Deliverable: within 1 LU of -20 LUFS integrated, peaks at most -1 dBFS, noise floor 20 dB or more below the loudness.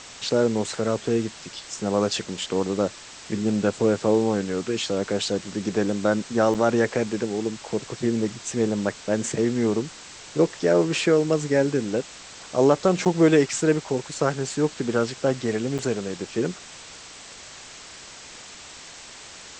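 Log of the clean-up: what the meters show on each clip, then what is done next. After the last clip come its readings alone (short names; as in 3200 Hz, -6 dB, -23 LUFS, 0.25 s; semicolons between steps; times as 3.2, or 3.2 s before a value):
dropouts 3; longest dropout 7.3 ms; noise floor -43 dBFS; noise floor target -44 dBFS; loudness -24.0 LUFS; peak -6.0 dBFS; loudness target -20.0 LUFS
-> interpolate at 6.54/13.05/15.78, 7.3 ms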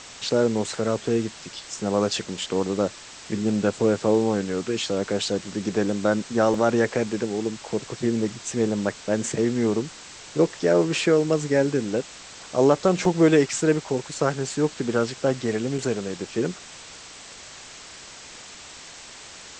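dropouts 0; noise floor -43 dBFS; noise floor target -44 dBFS
-> noise print and reduce 6 dB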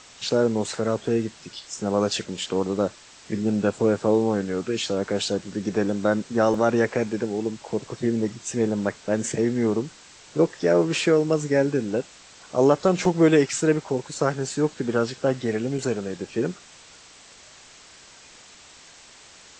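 noise floor -49 dBFS; loudness -24.0 LUFS; peak -6.0 dBFS; loudness target -20.0 LUFS
-> gain +4 dB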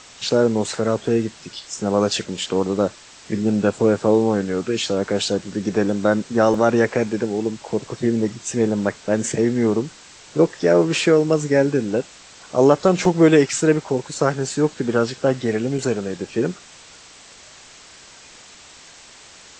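loudness -20.0 LUFS; peak -2.0 dBFS; noise floor -45 dBFS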